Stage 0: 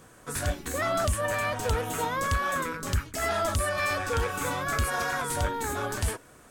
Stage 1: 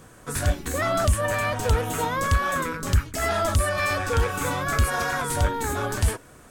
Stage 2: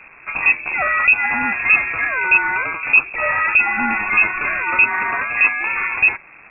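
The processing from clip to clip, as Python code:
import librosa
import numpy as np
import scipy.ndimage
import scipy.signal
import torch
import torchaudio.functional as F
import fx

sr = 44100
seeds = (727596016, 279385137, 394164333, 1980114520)

y1 = fx.low_shelf(x, sr, hz=190.0, db=5.0)
y1 = y1 * librosa.db_to_amplitude(3.0)
y2 = fx.quant_dither(y1, sr, seeds[0], bits=8, dither='none')
y2 = fx.freq_invert(y2, sr, carrier_hz=2600)
y2 = y2 * librosa.db_to_amplitude(5.5)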